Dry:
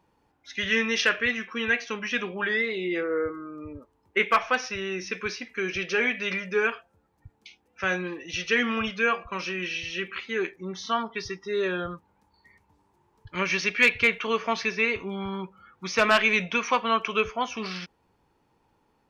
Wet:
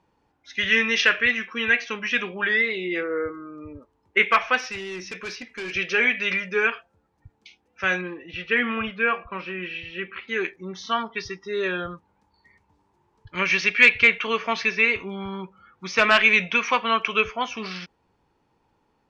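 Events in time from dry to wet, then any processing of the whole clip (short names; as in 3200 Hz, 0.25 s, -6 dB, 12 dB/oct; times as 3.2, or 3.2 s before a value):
4.58–5.74 overloaded stage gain 30.5 dB
8.01–10.28 Gaussian blur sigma 2.7 samples
whole clip: LPF 7600 Hz 12 dB/oct; dynamic EQ 2300 Hz, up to +6 dB, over -37 dBFS, Q 0.89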